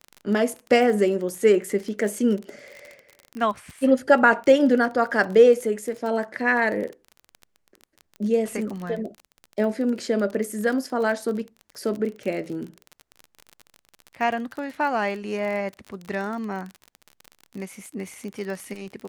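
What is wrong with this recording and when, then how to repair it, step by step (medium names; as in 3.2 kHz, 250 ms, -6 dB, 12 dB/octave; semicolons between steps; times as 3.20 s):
crackle 30 per s -30 dBFS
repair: de-click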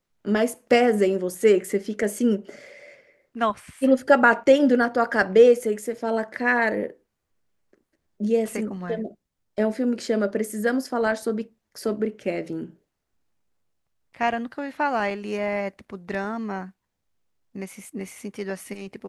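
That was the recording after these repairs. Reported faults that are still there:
nothing left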